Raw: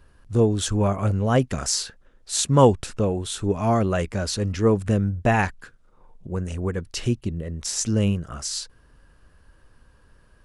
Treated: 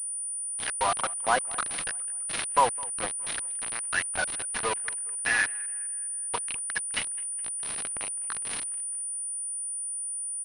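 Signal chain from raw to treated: dead-time distortion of 0.081 ms; reverb removal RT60 1.2 s; peaking EQ 1.6 kHz +5 dB 0.35 oct; comb 4.1 ms, depth 51%; compression 2.5:1, threshold -38 dBFS, peak gain reduction 19 dB; short-mantissa float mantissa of 6-bit; LFO high-pass square 0.62 Hz 880–1900 Hz; word length cut 6-bit, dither none; on a send: bucket-brigade echo 208 ms, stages 4096, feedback 47%, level -22 dB; on the sum: class-D stage that switches slowly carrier 9.4 kHz; trim +9 dB

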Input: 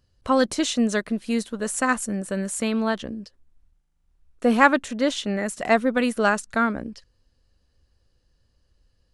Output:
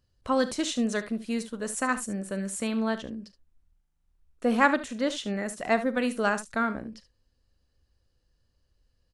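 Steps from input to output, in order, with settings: on a send: early reflections 40 ms -16 dB, 72 ms -14 dB; on the sum: trim -5.5 dB

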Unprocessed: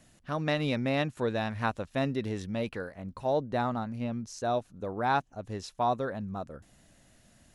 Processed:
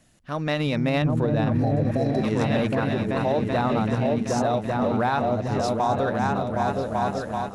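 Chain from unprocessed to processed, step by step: on a send: delay with an opening low-pass 383 ms, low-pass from 200 Hz, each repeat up 2 oct, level 0 dB; 1.60–2.21 s: on the sum: spectral replace 860–3900 Hz before; 1.02–1.92 s: tilt EQ -2 dB/octave; in parallel at -10.5 dB: crossover distortion -38.5 dBFS; on the sum: level rider gain up to 7 dB; peak limiter -14 dBFS, peak gain reduction 10.5 dB

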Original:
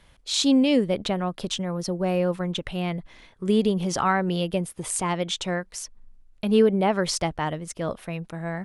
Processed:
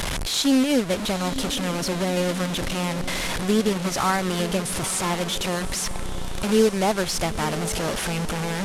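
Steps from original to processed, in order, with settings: one-bit delta coder 64 kbps, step -20.5 dBFS; transient shaper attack 0 dB, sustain -7 dB; echo that smears into a reverb 924 ms, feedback 61%, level -13 dB

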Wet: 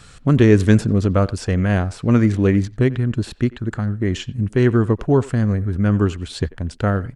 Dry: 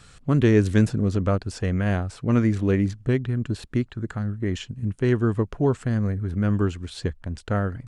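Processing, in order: tempo 1.1×; speakerphone echo 90 ms, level -19 dB; trim +5.5 dB

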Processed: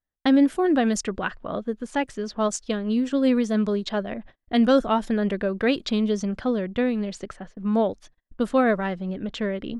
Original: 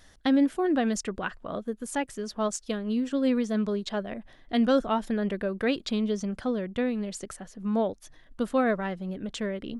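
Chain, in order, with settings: level-controlled noise filter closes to 2.1 kHz, open at -22.5 dBFS; gate -47 dBFS, range -38 dB; trim +4.5 dB

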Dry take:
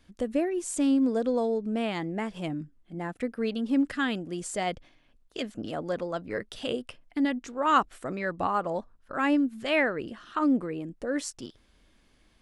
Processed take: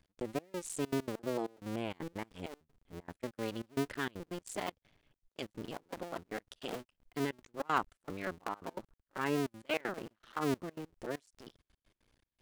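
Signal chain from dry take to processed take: cycle switcher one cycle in 2, muted; trance gate "x.xxx..xxxx.x." 195 bpm -24 dB; trim -6 dB

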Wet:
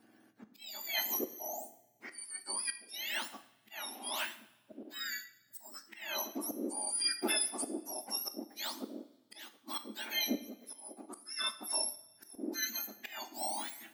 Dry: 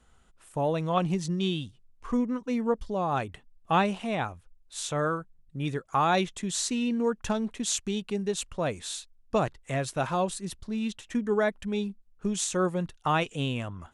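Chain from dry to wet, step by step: spectrum inverted on a logarithmic axis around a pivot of 1.5 kHz; slow attack 751 ms; two-slope reverb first 0.6 s, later 1.6 s, from -16 dB, DRR 9 dB; trim +1.5 dB

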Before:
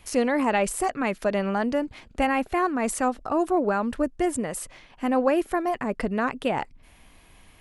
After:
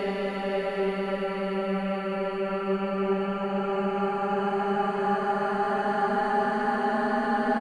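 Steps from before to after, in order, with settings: peak limiter -20.5 dBFS, peak gain reduction 11 dB; comb 7.4 ms, depth 54%; Paulstretch 32×, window 0.25 s, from 1.38 s; trim +2.5 dB

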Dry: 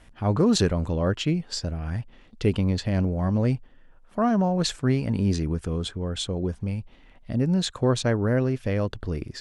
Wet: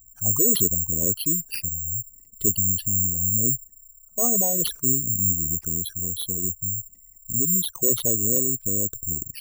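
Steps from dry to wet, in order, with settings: resonances exaggerated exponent 3; careless resampling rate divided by 6×, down none, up zero stuff; trim -7 dB

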